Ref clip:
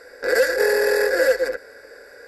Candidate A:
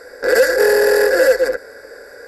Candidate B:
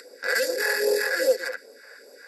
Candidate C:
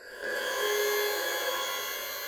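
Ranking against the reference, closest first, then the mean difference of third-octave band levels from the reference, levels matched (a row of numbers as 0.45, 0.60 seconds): A, B, C; 1.0, 4.5, 11.0 decibels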